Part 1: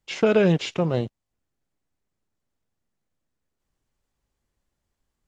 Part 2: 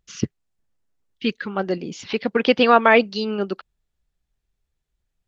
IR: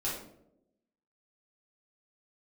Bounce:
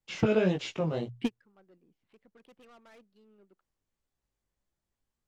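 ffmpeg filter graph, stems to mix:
-filter_complex "[0:a]bandreject=frequency=60:width_type=h:width=6,bandreject=frequency=120:width_type=h:width=6,flanger=delay=15:depth=4.2:speed=1.7,volume=-4.5dB,asplit=2[link_01][link_02];[1:a]adynamicsmooth=sensitivity=1.5:basefreq=1300,asoftclip=type=tanh:threshold=-18dB,volume=0dB[link_03];[link_02]apad=whole_len=232818[link_04];[link_03][link_04]sidechaingate=range=-35dB:threshold=-54dB:ratio=16:detection=peak[link_05];[link_01][link_05]amix=inputs=2:normalize=0"

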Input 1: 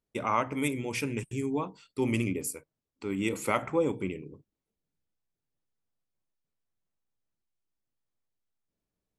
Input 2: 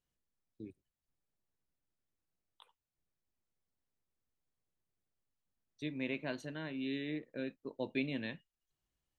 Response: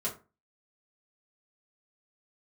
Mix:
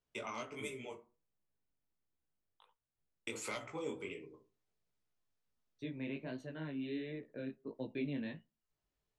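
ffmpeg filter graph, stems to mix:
-filter_complex "[0:a]highshelf=frequency=6900:gain=6.5,asoftclip=type=hard:threshold=-15dB,acrossover=split=460 7100:gain=0.158 1 0.0708[link_01][link_02][link_03];[link_01][link_02][link_03]amix=inputs=3:normalize=0,volume=-1dB,asplit=3[link_04][link_05][link_06];[link_04]atrim=end=0.93,asetpts=PTS-STARTPTS,afade=type=out:start_time=0.926:duration=0.004:curve=hsin[link_07];[link_05]atrim=start=0.93:end=3.27,asetpts=PTS-STARTPTS,volume=0[link_08];[link_06]atrim=start=3.27,asetpts=PTS-STARTPTS,afade=type=in:duration=0.004:curve=hsin[link_09];[link_07][link_08][link_09]concat=n=3:v=0:a=1,asplit=2[link_10][link_11];[link_11]volume=-7dB[link_12];[1:a]highshelf=frequency=3200:gain=-11.5,volume=2dB,asplit=3[link_13][link_14][link_15];[link_14]volume=-22.5dB[link_16];[link_15]apad=whole_len=404919[link_17];[link_10][link_17]sidechaincompress=threshold=-52dB:ratio=8:attack=16:release=551[link_18];[2:a]atrim=start_sample=2205[link_19];[link_12][link_16]amix=inputs=2:normalize=0[link_20];[link_20][link_19]afir=irnorm=-1:irlink=0[link_21];[link_18][link_13][link_21]amix=inputs=3:normalize=0,acrossover=split=380|3000[link_22][link_23][link_24];[link_23]acompressor=threshold=-43dB:ratio=6[link_25];[link_22][link_25][link_24]amix=inputs=3:normalize=0,flanger=delay=15:depth=7:speed=1.4"

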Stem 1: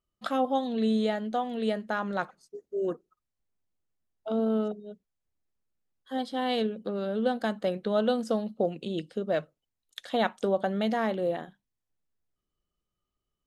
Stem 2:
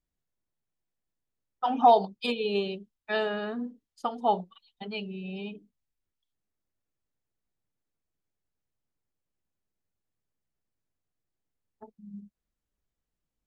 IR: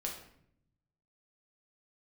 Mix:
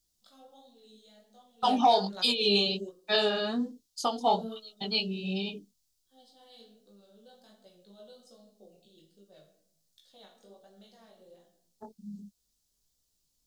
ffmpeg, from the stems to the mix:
-filter_complex "[0:a]volume=-10dB,asplit=2[link_01][link_02];[link_02]volume=-18dB[link_03];[1:a]acontrast=41,volume=0dB,asplit=2[link_04][link_05];[link_05]apad=whole_len=593674[link_06];[link_01][link_06]sidechaingate=range=-33dB:threshold=-42dB:ratio=16:detection=peak[link_07];[2:a]atrim=start_sample=2205[link_08];[link_03][link_08]afir=irnorm=-1:irlink=0[link_09];[link_07][link_04][link_09]amix=inputs=3:normalize=0,highshelf=frequency=3100:width_type=q:width=1.5:gain=14,flanger=delay=15.5:depth=7:speed=1.3,alimiter=limit=-13.5dB:level=0:latency=1:release=200"

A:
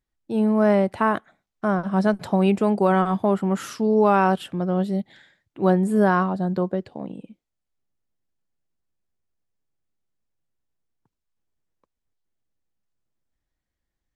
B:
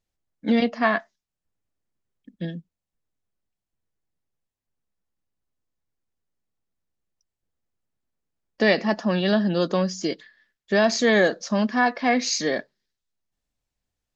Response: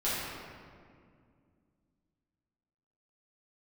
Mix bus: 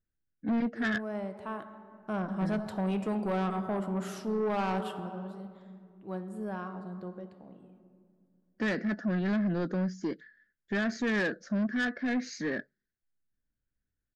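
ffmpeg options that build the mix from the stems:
-filter_complex "[0:a]adelay=450,volume=-10.5dB,afade=type=in:start_time=1.82:duration=0.34:silence=0.375837,afade=type=out:start_time=4.89:duration=0.21:silence=0.334965,asplit=2[link_01][link_02];[link_02]volume=-16.5dB[link_03];[1:a]firequalizer=gain_entry='entry(270,0);entry(990,-21);entry(1500,3);entry(2600,-17)':delay=0.05:min_phase=1,volume=-2dB[link_04];[2:a]atrim=start_sample=2205[link_05];[link_03][link_05]afir=irnorm=-1:irlink=0[link_06];[link_01][link_04][link_06]amix=inputs=3:normalize=0,asoftclip=type=tanh:threshold=-25dB"

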